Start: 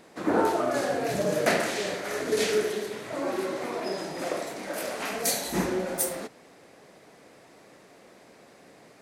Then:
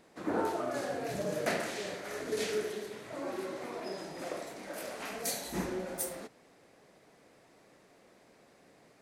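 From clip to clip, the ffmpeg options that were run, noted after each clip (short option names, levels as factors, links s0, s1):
-af "lowshelf=f=69:g=7.5,volume=0.376"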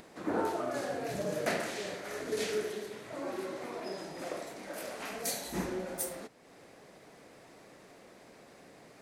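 -af "acompressor=mode=upward:threshold=0.00447:ratio=2.5"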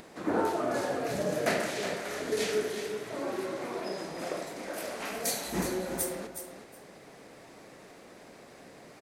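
-af "aecho=1:1:367|734:0.355|0.0568,volume=1.5"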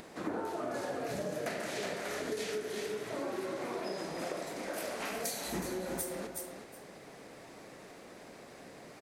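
-af "acompressor=threshold=0.0224:ratio=12"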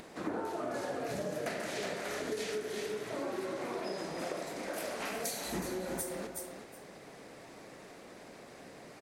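-ar 44100 -c:a nellymoser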